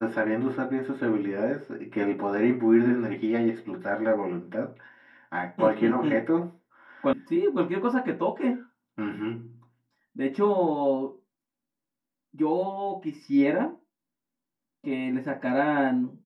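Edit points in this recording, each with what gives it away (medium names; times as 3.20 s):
7.13 s: sound stops dead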